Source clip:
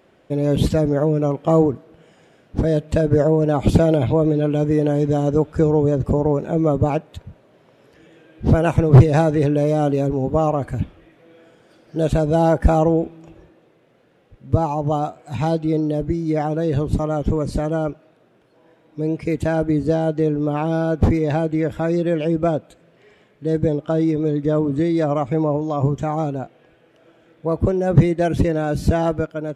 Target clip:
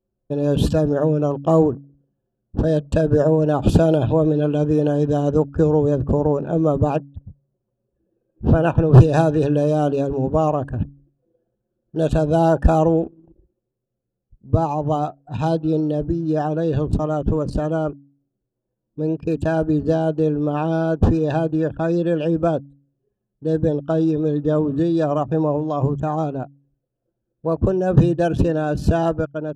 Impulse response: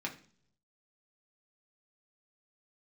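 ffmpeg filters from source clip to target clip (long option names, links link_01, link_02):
-filter_complex "[0:a]asettb=1/sr,asplit=3[link_01][link_02][link_03];[link_01]atrim=end=6.964[link_04];[link_02]atrim=start=6.96:end=8.94,asetpts=PTS-STARTPTS,afade=type=in:duration=0.004:curve=qsin,afade=type=out:start_time=1.976:duration=0.004:curve=qsin,bass=frequency=250:gain=0,treble=frequency=4000:gain=-10[link_05];[link_03]atrim=start=8.936[link_06];[link_04][link_05]acrossfade=duration=0.004:curve1=hsin:curve2=qsin[link_07];[link_07][link_06]acrossfade=duration=0.004:curve1=qsin:curve2=hsin,anlmdn=6.31,asuperstop=centerf=2100:order=12:qfactor=3.5,bandreject=frequency=140.4:width_type=h:width=4,bandreject=frequency=280.8:width_type=h:width=4"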